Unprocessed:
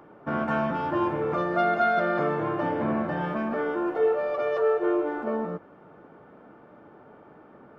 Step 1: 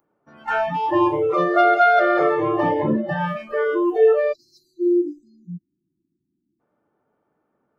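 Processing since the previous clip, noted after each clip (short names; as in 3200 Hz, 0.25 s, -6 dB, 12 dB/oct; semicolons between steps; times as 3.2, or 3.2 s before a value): spectral delete 4.33–6.6, 370–3700 Hz; spectral noise reduction 29 dB; gain +8.5 dB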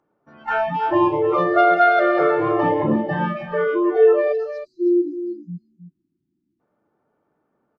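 air absorption 110 m; echo 0.316 s -10.5 dB; gain +1 dB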